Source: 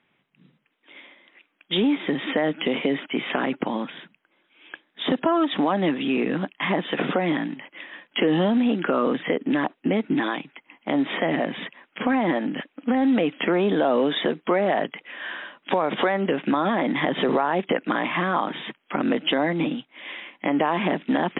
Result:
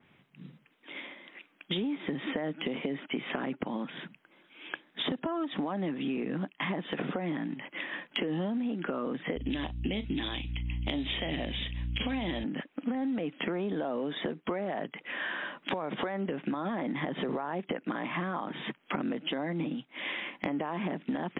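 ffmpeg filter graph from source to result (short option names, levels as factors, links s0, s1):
-filter_complex "[0:a]asettb=1/sr,asplit=3[s0][s1][s2];[s0]atrim=end=9.364[s3];[s1]atrim=start=9.36:end=12.44,asetpts=PTS-STARTPTS,afade=t=in:d=0.004:c=qsin,afade=t=out:st=3.076:d=0.004:c=qsin,highshelf=f=2200:t=q:w=1.5:g=14,asplit=2[s4][s5];[s5]adelay=38,volume=0.211[s6];[s4][s6]amix=inputs=2:normalize=0,atrim=end_sample=135828,aeval=exprs='val(0)+0.0158*(sin(2*PI*60*n/s)+sin(2*PI*2*60*n/s)/2+sin(2*PI*3*60*n/s)/3+sin(2*PI*4*60*n/s)/4+sin(2*PI*5*60*n/s)/5)':c=same[s7];[s2]atrim=start=12.436[s8];[s3][s7]acrossfade=d=0.004:c1=hsin:c2=qsin[s9];[s9][s8]acrossfade=d=0.004:c1=qsin:c2=hsin,equalizer=f=65:w=0.41:g=10,acompressor=threshold=0.0178:ratio=6,adynamicequalizer=threshold=0.00282:dfrequency=2700:dqfactor=0.7:tfrequency=2700:tqfactor=0.7:attack=5:release=100:ratio=0.375:range=2.5:mode=cutabove:tftype=highshelf,volume=1.5"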